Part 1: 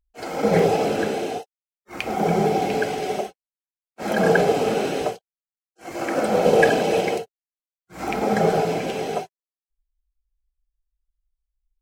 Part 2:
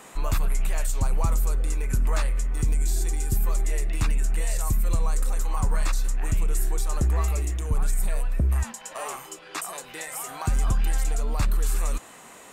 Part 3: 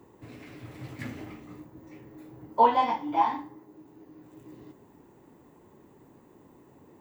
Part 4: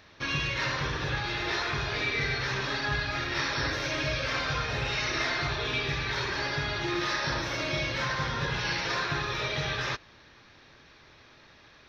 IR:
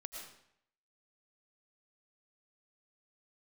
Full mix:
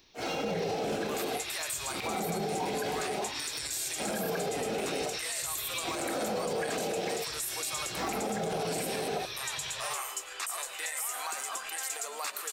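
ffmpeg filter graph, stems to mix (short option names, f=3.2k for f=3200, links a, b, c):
-filter_complex "[0:a]acompressor=threshold=-19dB:ratio=6,volume=-1.5dB[a];[1:a]highpass=f=410:w=0.5412,highpass=f=410:w=1.3066,tiltshelf=f=970:g=-5.5,adelay=850,volume=-3dB,asplit=2[b][c];[c]volume=-4.5dB[d];[2:a]volume=-13.5dB[e];[3:a]highshelf=f=4.1k:g=6.5,aexciter=amount=3.4:drive=5.6:freq=2.4k,volume=-16dB[f];[4:a]atrim=start_sample=2205[g];[d][g]afir=irnorm=-1:irlink=0[h];[a][b][e][f][h]amix=inputs=5:normalize=0,alimiter=limit=-24dB:level=0:latency=1:release=62"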